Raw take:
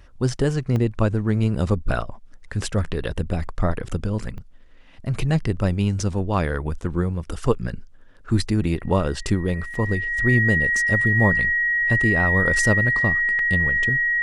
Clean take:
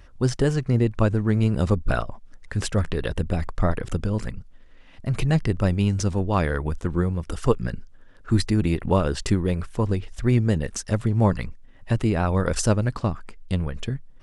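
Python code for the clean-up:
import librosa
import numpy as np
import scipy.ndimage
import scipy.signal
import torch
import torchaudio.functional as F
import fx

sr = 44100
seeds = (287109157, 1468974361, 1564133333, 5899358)

y = fx.notch(x, sr, hz=1900.0, q=30.0)
y = fx.fix_interpolate(y, sr, at_s=(0.76, 4.38, 9.74, 13.39), length_ms=2.4)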